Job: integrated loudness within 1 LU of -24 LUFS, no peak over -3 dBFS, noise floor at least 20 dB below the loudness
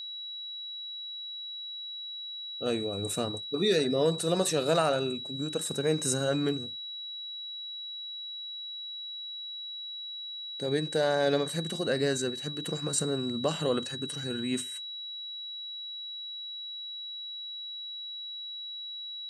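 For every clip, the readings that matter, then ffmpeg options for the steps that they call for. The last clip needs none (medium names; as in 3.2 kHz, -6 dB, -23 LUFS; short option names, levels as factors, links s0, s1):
steady tone 3.9 kHz; tone level -37 dBFS; loudness -32.0 LUFS; peak level -13.0 dBFS; loudness target -24.0 LUFS
-> -af "bandreject=f=3900:w=30"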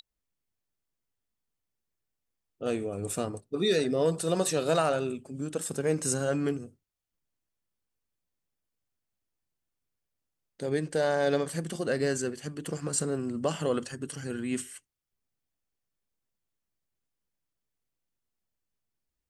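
steady tone not found; loudness -30.0 LUFS; peak level -13.5 dBFS; loudness target -24.0 LUFS
-> -af "volume=2"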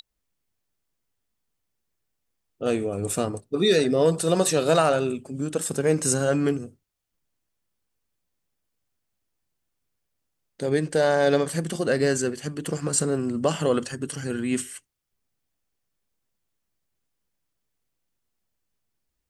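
loudness -24.0 LUFS; peak level -7.5 dBFS; noise floor -79 dBFS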